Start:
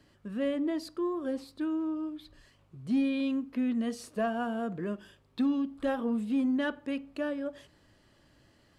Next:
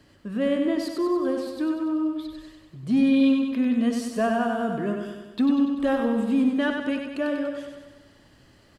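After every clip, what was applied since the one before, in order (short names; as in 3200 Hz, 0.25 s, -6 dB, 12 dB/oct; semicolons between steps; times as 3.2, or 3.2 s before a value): feedback echo 96 ms, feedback 59%, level -5 dB; gain +6 dB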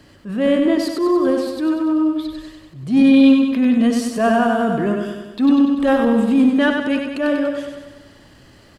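transient shaper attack -8 dB, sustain -1 dB; gain +9 dB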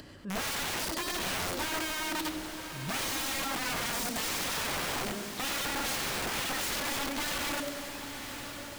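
upward compressor, threshold -34 dBFS; wrapped overs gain 20.5 dB; diffused feedback echo 0.986 s, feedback 58%, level -9 dB; gain -8.5 dB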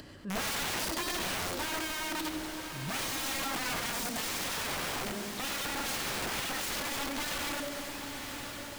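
limiter -27.5 dBFS, peak gain reduction 3.5 dB; reverb RT60 2.3 s, pre-delay 83 ms, DRR 14.5 dB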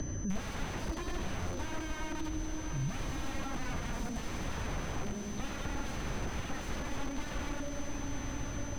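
RIAA curve playback; whine 6100 Hz -46 dBFS; three-band squash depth 100%; gain -6.5 dB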